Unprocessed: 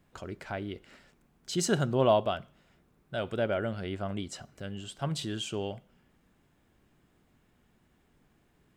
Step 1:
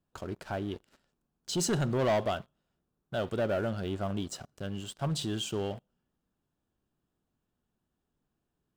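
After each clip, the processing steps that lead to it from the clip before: peaking EQ 2.1 kHz -12 dB 0.4 oct; waveshaping leveller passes 3; trim -9 dB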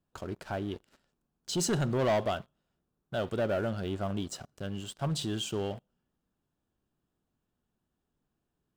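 no audible change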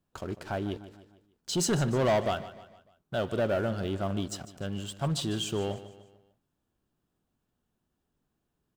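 feedback delay 150 ms, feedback 46%, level -15 dB; trim +2 dB

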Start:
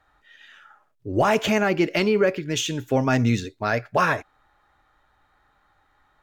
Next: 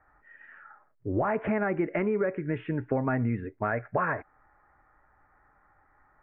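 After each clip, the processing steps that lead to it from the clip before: steep low-pass 2.1 kHz 48 dB/octave; compression 4:1, threshold -25 dBFS, peak gain reduction 9 dB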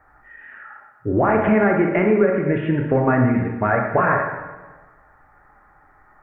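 reverberation RT60 1.3 s, pre-delay 18 ms, DRR 1.5 dB; endings held to a fixed fall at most 130 dB/s; trim +8.5 dB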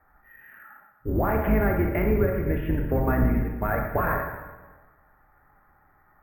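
octave divider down 2 oct, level +3 dB; careless resampling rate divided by 3×, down filtered, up hold; trim -8 dB

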